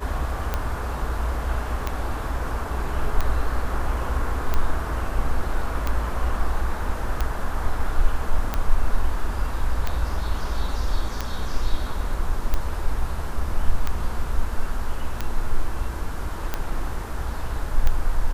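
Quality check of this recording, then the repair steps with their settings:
scratch tick 45 rpm −10 dBFS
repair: click removal

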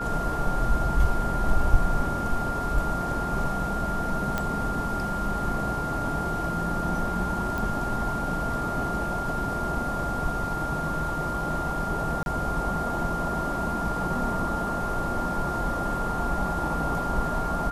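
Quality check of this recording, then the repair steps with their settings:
whistle 1,400 Hz −30 dBFS
0:04.38: click −13 dBFS
0:07.58: click
0:12.23–0:12.26: drop-out 31 ms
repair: click removal
notch filter 1,400 Hz, Q 30
repair the gap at 0:12.23, 31 ms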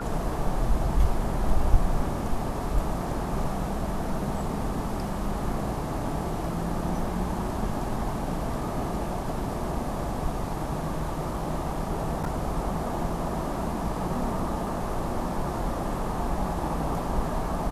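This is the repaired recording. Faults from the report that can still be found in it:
none of them is left

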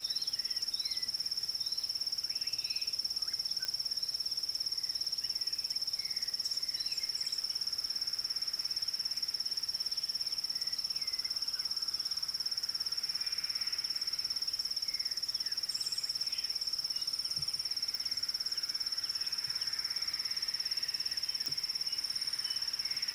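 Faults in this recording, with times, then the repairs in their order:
surface crackle 56 per second −41 dBFS
0:03.65: click −19 dBFS
0:17.95: click
0:21.46: click −21 dBFS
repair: click removal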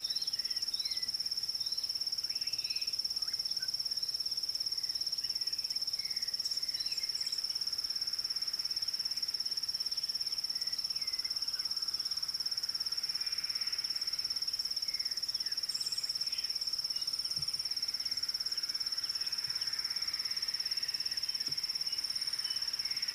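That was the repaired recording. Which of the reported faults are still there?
0:03.65: click
0:17.95: click

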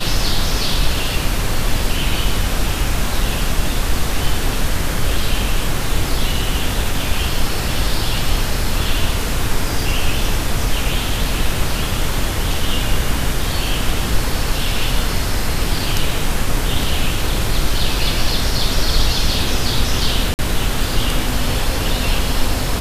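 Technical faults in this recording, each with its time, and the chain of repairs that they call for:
0:20.34–0:20.39: drop-out 49 ms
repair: repair the gap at 0:20.34, 49 ms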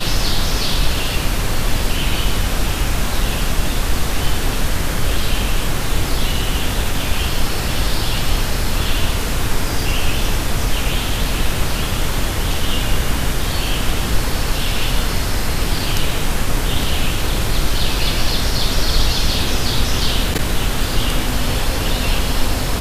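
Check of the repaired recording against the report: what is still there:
none of them is left

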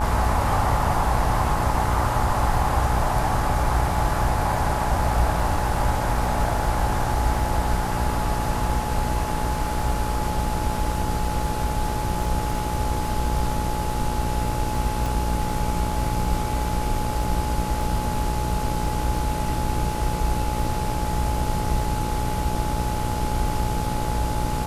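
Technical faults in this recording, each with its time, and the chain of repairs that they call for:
mains buzz 60 Hz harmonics 26 −28 dBFS
surface crackle 21 per second −32 dBFS
whistle 850 Hz −29 dBFS
0:15.06: click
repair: click removal
notch filter 850 Hz, Q 30
hum removal 60 Hz, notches 26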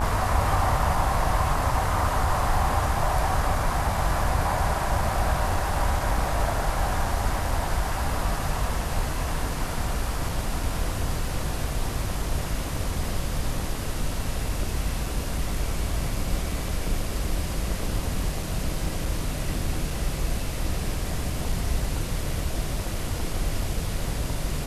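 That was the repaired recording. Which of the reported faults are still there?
none of them is left

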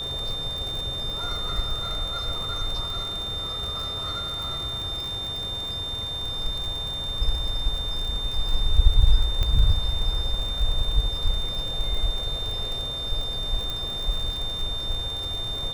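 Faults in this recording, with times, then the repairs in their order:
surface crackle 49 per second −29 dBFS
whistle 3,600 Hz −29 dBFS
0:09.43: click −13 dBFS
0:13.70: click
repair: click removal
notch filter 3,600 Hz, Q 30

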